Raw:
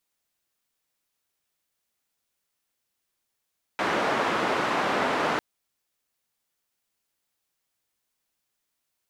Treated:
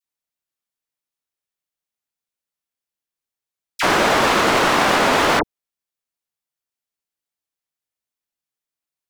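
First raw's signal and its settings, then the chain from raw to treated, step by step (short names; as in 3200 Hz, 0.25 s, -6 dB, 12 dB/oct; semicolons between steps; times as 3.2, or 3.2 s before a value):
noise band 230–1300 Hz, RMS -25.5 dBFS 1.60 s
sample leveller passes 5; dispersion lows, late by 42 ms, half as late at 1500 Hz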